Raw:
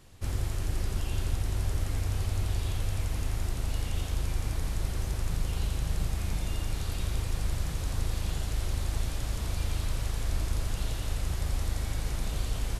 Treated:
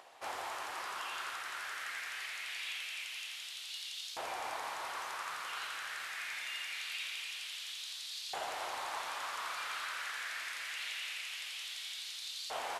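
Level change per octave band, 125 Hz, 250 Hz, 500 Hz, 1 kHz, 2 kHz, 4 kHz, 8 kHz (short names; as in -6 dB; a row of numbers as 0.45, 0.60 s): under -40 dB, -23.5 dB, -6.5 dB, +4.0 dB, +5.5 dB, +3.0 dB, -4.5 dB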